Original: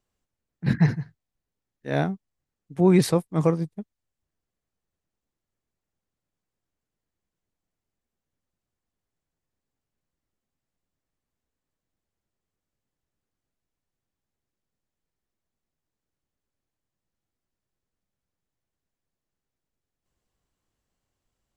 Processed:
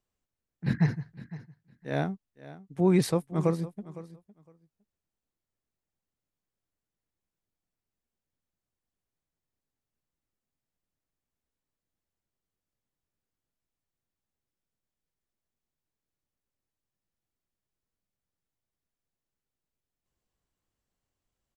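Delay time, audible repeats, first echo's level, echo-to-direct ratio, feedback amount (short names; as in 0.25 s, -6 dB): 0.509 s, 2, -17.0 dB, -17.0 dB, 16%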